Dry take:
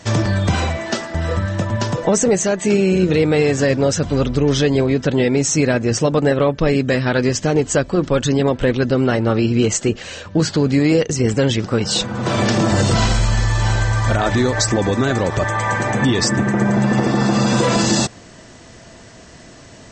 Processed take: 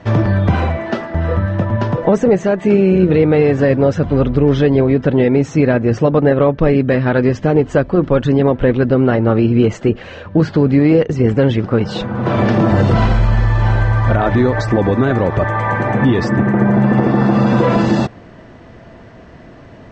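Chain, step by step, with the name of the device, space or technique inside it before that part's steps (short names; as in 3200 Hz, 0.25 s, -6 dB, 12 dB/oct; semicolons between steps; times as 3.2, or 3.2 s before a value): phone in a pocket (LPF 3100 Hz 12 dB/oct; high shelf 2500 Hz -11 dB); gain +4 dB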